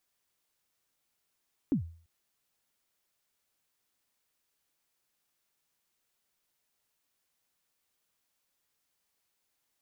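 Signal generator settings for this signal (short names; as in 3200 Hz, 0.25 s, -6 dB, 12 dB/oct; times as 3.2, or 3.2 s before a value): kick drum length 0.34 s, from 320 Hz, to 83 Hz, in 0.105 s, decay 0.45 s, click off, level -21 dB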